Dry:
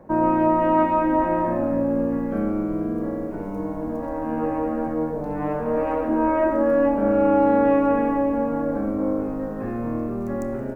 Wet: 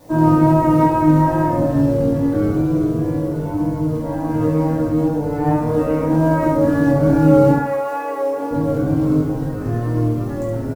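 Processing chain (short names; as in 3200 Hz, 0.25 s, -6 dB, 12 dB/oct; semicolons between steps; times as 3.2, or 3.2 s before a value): octaver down 1 oct, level -3 dB; 7.51–8.5 HPF 790 Hz -> 350 Hz 24 dB/oct; in parallel at -8 dB: short-mantissa float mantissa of 2-bit; on the sum: added noise white -53 dBFS; wow and flutter 21 cents; on a send: early reflections 20 ms -5.5 dB, 70 ms -5 dB; on the sum: FDN reverb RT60 0.41 s, low-frequency decay 1.5×, high-frequency decay 0.6×, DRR -3.5 dB; gain -6.5 dB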